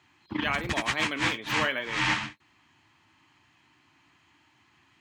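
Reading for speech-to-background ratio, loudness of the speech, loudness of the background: -2.0 dB, -31.5 LUFS, -29.5 LUFS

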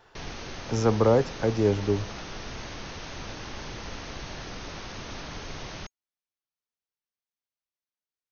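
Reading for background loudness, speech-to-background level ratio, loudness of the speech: -39.0 LUFS, 14.0 dB, -25.0 LUFS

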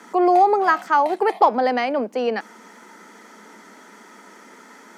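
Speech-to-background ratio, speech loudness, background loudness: 19.5 dB, -19.0 LUFS, -38.5 LUFS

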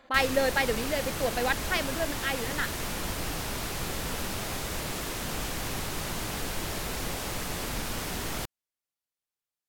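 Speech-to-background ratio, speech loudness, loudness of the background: 3.5 dB, -29.5 LUFS, -33.0 LUFS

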